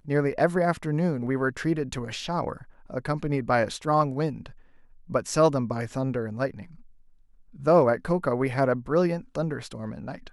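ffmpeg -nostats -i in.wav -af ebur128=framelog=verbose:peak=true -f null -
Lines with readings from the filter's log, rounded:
Integrated loudness:
  I:         -26.2 LUFS
  Threshold: -36.8 LUFS
Loudness range:
  LRA:         2.9 LU
  Threshold: -47.1 LUFS
  LRA low:   -28.8 LUFS
  LRA high:  -25.9 LUFS
True peak:
  Peak:       -8.1 dBFS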